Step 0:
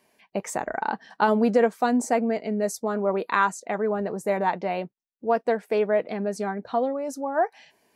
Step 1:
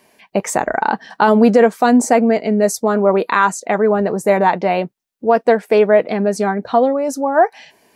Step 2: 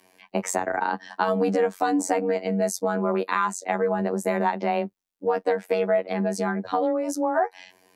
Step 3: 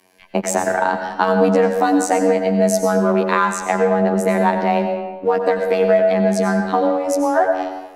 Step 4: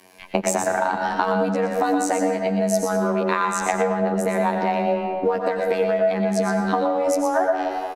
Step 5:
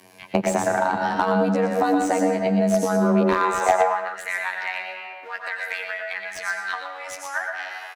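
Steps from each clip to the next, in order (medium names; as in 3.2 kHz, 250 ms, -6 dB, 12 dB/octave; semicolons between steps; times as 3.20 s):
loudness maximiser +12 dB; trim -1 dB
robot voice 91.1 Hz; frequency shift +15 Hz; compression 2.5:1, threshold -18 dBFS, peak gain reduction 7 dB; trim -3 dB
in parallel at -4 dB: hysteresis with a dead band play -33.5 dBFS; on the sum: reverberation RT60 1.2 s, pre-delay 85 ms, DRR 5 dB; trim +2 dB
compression 6:1, threshold -24 dBFS, peak gain reduction 13.5 dB; delay 120 ms -7.5 dB; trim +5.5 dB
high-pass sweep 110 Hz -> 1.8 kHz, 2.95–4.23 s; slew-rate limiter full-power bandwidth 320 Hz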